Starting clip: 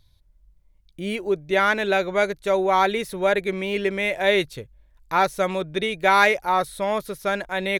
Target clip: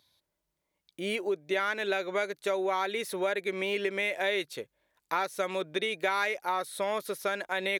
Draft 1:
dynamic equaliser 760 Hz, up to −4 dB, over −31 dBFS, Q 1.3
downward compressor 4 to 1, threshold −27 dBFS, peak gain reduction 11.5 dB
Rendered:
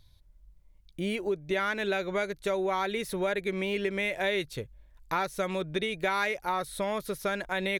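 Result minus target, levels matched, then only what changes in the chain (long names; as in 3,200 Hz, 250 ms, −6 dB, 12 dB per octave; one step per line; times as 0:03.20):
250 Hz band +4.0 dB
add after dynamic equaliser: high-pass filter 320 Hz 12 dB per octave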